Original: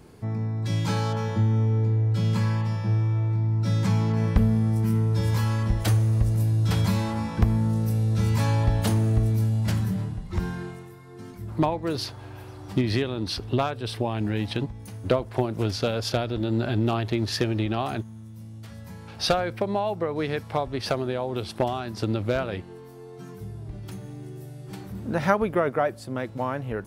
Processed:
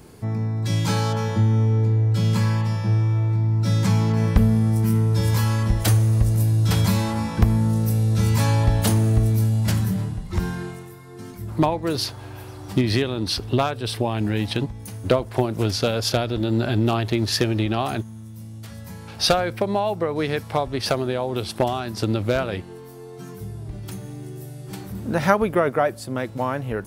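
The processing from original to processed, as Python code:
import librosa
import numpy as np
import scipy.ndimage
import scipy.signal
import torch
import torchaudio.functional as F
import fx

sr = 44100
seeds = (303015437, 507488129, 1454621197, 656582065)

y = fx.high_shelf(x, sr, hz=6000.0, db=7.5)
y = y * librosa.db_to_amplitude(3.5)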